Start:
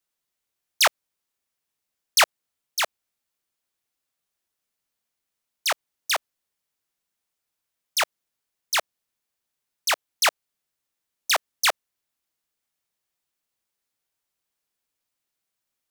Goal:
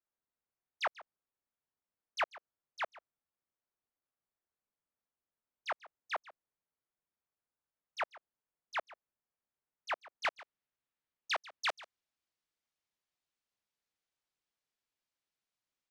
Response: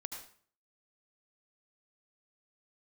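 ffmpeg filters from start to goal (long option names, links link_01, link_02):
-af "asetnsamples=nb_out_samples=441:pad=0,asendcmd='10.25 lowpass f 2800;11.69 lowpass f 6000',lowpass=1500,acompressor=threshold=-28dB:ratio=2,aecho=1:1:141:0.112,volume=-6.5dB"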